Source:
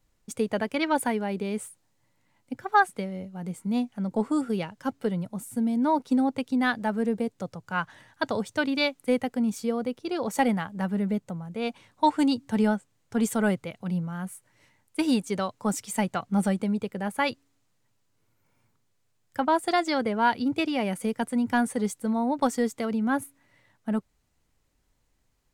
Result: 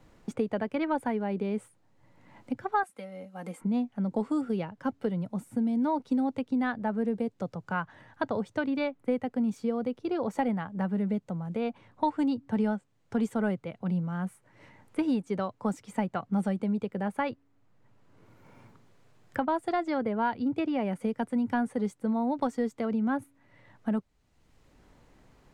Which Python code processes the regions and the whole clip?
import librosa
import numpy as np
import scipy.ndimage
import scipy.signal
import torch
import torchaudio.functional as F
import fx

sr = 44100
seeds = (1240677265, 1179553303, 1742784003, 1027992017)

y = fx.chain(x, sr, fx.highpass(hz=980.0, slope=6),
    fx.peak_eq(hz=11000.0, db=12.0, octaves=1.0),
    fx.comb(ms=3.8, depth=0.6), at=(2.83, 3.61))
y = fx.lowpass(y, sr, hz=1300.0, slope=6)
y = fx.band_squash(y, sr, depth_pct=70)
y = y * 10.0 ** (-2.5 / 20.0)